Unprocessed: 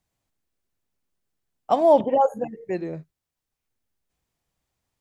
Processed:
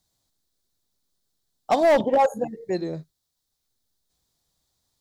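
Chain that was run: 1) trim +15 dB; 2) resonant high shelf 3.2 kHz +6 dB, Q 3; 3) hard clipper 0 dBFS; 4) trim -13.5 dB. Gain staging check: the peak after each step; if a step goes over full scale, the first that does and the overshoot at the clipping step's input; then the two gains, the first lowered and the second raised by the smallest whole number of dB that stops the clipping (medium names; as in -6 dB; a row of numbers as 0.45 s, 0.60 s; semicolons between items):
+9.5 dBFS, +9.0 dBFS, 0.0 dBFS, -13.5 dBFS; step 1, 9.0 dB; step 1 +6 dB, step 4 -4.5 dB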